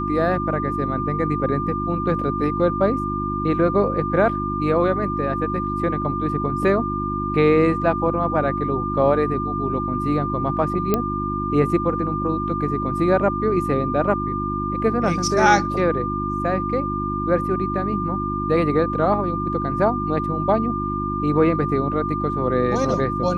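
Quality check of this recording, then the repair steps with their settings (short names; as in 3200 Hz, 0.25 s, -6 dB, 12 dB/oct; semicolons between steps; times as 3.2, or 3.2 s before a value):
hum 50 Hz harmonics 7 -27 dBFS
tone 1200 Hz -25 dBFS
10.94 pop -6 dBFS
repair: de-click; de-hum 50 Hz, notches 7; notch 1200 Hz, Q 30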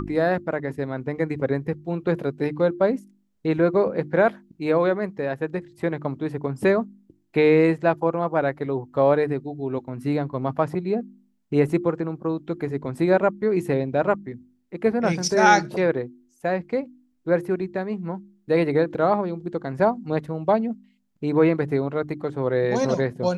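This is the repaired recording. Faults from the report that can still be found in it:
none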